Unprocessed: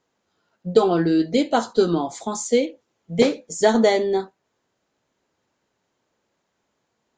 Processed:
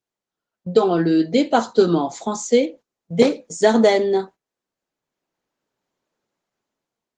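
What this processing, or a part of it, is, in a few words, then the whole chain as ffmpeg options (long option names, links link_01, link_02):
video call: -filter_complex "[0:a]asettb=1/sr,asplit=3[link_01][link_02][link_03];[link_01]atrim=end=2.624[link_04];[link_02]atrim=start=2.62:end=3.43,asetpts=PTS-STARTPTS,afade=type=in:duration=0.004:curve=qsin,afade=type=out:start_time=0.806:duration=0.004:curve=qsin,equalizer=frequency=2800:width=2:gain=-2.5[link_05];[link_03]atrim=start=3.426[link_06];[link_04][link_05]acrossfade=duration=0.004:curve1=hsin:curve2=qsin[link_07];[link_07][link_06]acrossfade=duration=0.004:curve1=qsin:curve2=hsin,highpass=frequency=110:width=0.5412,highpass=frequency=110:width=1.3066,dynaudnorm=framelen=440:gausssize=5:maxgain=11.5dB,agate=range=-16dB:threshold=-37dB:ratio=16:detection=peak" -ar 48000 -c:a libopus -b:a 20k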